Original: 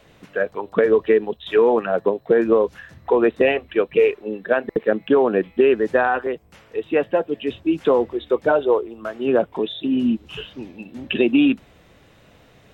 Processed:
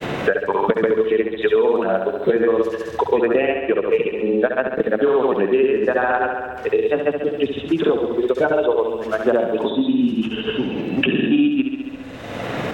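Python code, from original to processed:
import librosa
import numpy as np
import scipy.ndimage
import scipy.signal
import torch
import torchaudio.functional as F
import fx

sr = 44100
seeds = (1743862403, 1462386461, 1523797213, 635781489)

y = fx.granulator(x, sr, seeds[0], grain_ms=100.0, per_s=20.0, spray_ms=100.0, spread_st=0)
y = fx.echo_feedback(y, sr, ms=68, feedback_pct=60, wet_db=-7.5)
y = fx.band_squash(y, sr, depth_pct=100)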